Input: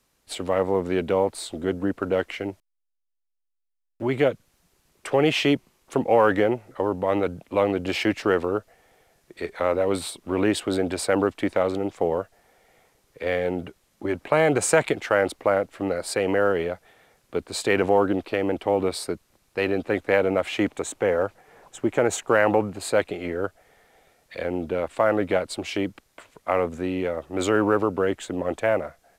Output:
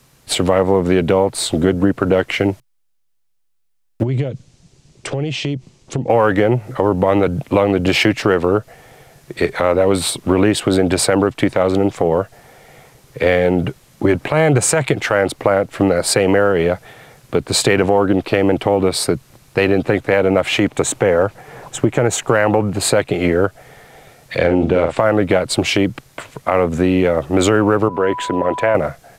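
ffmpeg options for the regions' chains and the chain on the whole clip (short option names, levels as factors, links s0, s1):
-filter_complex "[0:a]asettb=1/sr,asplit=3[s0][s1][s2];[s0]atrim=end=4.034[s3];[s1]atrim=start=4.03:end=6.1,asetpts=PTS-STARTPTS,afade=t=in:d=0.004:c=qsin,afade=t=out:st=2.066:d=0.004:c=qsin,lowpass=f=7600:w=0.5412,lowpass=f=7600:w=1.3066,equalizer=f=1300:w=0.61:g=-11,acompressor=threshold=0.0178:ratio=10:attack=3.2:release=140:knee=1:detection=peak[s4];[s2]atrim=start=6.096[s5];[s3][s4]acrossfade=d=0.004:c1=hsin:c2=qsin[s6];[s6][s5]acrossfade=d=0.004:c1=qsin:c2=hsin,asettb=1/sr,asplit=3[s7][s8][s9];[s7]atrim=end=24.374[s10];[s8]atrim=start=24.37:end=24.99,asetpts=PTS-STARTPTS,afade=t=in:d=0.004:c=qsin,afade=t=out:st=0.616:d=0.004:c=qsin,adynamicsmooth=sensitivity=6:basefreq=7900,asplit=2[s11][s12];[s12]adelay=48,volume=0.473[s13];[s11][s13]amix=inputs=2:normalize=0,atrim=end_sample=27342[s14];[s9]atrim=start=24.986[s15];[s10][s14]acrossfade=d=0.004:c1=hsin:c2=qsin[s16];[s16][s15]acrossfade=d=0.004:c1=qsin:c2=hsin,asettb=1/sr,asplit=3[s17][s18][s19];[s17]atrim=end=27.884[s20];[s18]atrim=start=27.88:end=28.75,asetpts=PTS-STARTPTS,afade=t=in:d=0.004:c=qsin,afade=t=out:st=0.866:d=0.004:c=qsin,bass=f=250:g=-8,treble=f=4000:g=-9,acompressor=threshold=0.0158:ratio=1.5:attack=3.2:release=140:knee=1:detection=peak,aeval=exprs='val(0)+0.0126*sin(2*PI*990*n/s)':c=same[s21];[s19]atrim=start=28.746[s22];[s20][s21]acrossfade=d=0.004:c1=hsin:c2=qsin[s23];[s23][s22]acrossfade=d=0.004:c1=qsin:c2=hsin,equalizer=f=130:t=o:w=0.62:g=12.5,acompressor=threshold=0.0562:ratio=5,alimiter=level_in=6.31:limit=0.891:release=50:level=0:latency=1,volume=0.891"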